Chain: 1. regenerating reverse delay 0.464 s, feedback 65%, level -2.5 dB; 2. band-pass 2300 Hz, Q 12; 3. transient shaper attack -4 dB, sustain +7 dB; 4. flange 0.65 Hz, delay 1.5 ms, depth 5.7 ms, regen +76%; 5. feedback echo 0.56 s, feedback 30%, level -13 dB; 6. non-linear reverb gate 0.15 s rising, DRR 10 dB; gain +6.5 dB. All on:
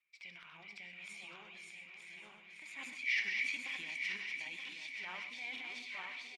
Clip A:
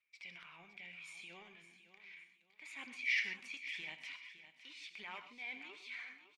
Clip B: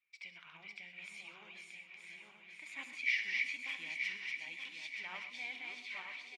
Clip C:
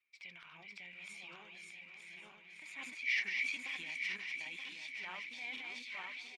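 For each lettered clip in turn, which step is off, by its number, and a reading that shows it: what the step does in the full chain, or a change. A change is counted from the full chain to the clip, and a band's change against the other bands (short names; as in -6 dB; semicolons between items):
1, 500 Hz band +1.5 dB; 3, crest factor change +2.5 dB; 6, echo-to-direct -8.0 dB to -12.5 dB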